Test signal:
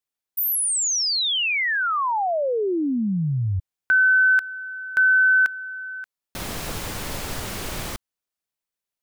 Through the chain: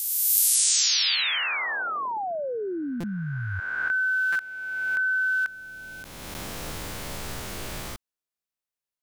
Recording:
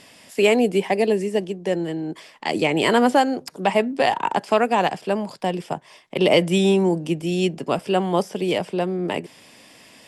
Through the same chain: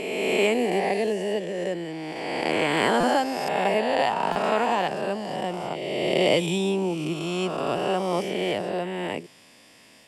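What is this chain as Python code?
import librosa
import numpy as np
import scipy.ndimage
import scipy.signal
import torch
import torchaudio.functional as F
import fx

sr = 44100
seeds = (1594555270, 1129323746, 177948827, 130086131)

y = fx.spec_swells(x, sr, rise_s=2.08)
y = fx.buffer_glitch(y, sr, at_s=(3.0, 4.32), block=256, repeats=5)
y = F.gain(torch.from_numpy(y), -8.0).numpy()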